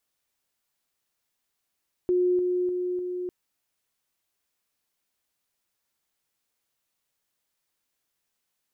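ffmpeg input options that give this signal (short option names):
-f lavfi -i "aevalsrc='pow(10,(-19.5-3*floor(t/0.3))/20)*sin(2*PI*360*t)':d=1.2:s=44100"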